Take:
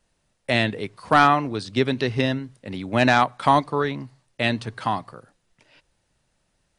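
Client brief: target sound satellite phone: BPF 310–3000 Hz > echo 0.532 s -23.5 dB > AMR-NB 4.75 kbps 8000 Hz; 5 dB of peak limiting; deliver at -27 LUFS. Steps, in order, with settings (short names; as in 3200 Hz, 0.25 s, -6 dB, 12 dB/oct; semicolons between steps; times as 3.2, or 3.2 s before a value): limiter -10 dBFS; BPF 310–3000 Hz; echo 0.532 s -23.5 dB; gain +0.5 dB; AMR-NB 4.75 kbps 8000 Hz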